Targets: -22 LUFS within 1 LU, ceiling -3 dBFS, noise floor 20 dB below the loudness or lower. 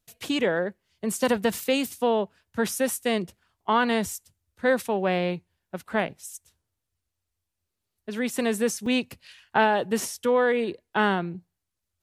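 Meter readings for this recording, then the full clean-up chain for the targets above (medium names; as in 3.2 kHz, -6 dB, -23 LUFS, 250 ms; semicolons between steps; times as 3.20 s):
dropouts 1; longest dropout 3.7 ms; loudness -26.0 LUFS; peak level -7.5 dBFS; loudness target -22.0 LUFS
-> interpolate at 8.86 s, 3.7 ms; trim +4 dB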